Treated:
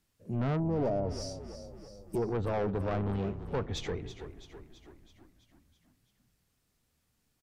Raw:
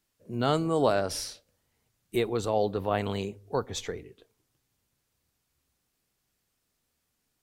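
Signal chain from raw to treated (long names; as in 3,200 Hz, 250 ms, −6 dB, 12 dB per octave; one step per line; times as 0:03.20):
bass and treble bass +7 dB, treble −1 dB
treble cut that deepens with the level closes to 900 Hz, closed at −20.5 dBFS
soft clipping −26.5 dBFS, distortion −8 dB
gain on a spectral selection 0:00.60–0:02.22, 1,000–4,500 Hz −14 dB
echo with shifted repeats 330 ms, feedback 59%, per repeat −30 Hz, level −12 dB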